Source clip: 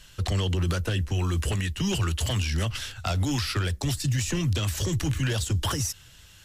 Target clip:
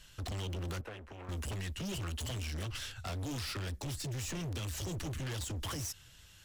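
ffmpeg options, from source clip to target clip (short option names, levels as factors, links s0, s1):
-filter_complex "[0:a]volume=31.6,asoftclip=hard,volume=0.0316,asettb=1/sr,asplit=3[s0][s1][s2];[s0]atrim=end=0.814[s3];[s1]atrim=start=0.81:end=1.29,asetpts=PTS-STARTPTS,afade=t=in:d=0.004:c=qsin,afade=t=out:st=0.476:d=0.004:c=qsin,acrossover=split=340 2600:gain=0.224 1 0.141[s4][s5][s6];[s4][s5][s6]amix=inputs=3:normalize=0[s7];[s2]atrim=start=1.286[s8];[s3][s7]acrossfade=d=0.004:c1=hsin:c2=qsin[s9];[s9][s8]acrossfade=d=0.004:c1=qsin:c2=hsin,volume=0.473"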